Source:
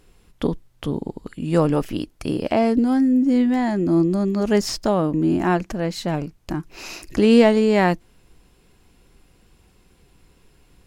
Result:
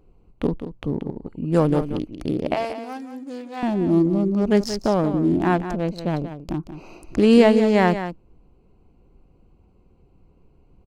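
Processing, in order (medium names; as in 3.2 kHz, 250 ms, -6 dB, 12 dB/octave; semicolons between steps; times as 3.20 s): local Wiener filter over 25 samples; 2.54–3.63 s: high-pass 760 Hz 12 dB/octave; delay 181 ms -10.5 dB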